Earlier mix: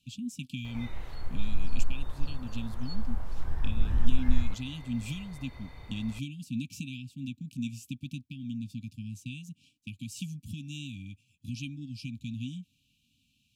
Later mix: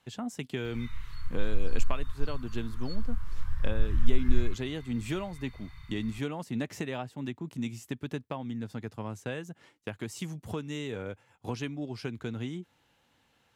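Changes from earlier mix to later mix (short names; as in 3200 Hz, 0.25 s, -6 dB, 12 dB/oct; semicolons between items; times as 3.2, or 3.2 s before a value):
speech: remove brick-wall FIR band-stop 290–2300 Hz; background: add elliptic band-stop 150–1100 Hz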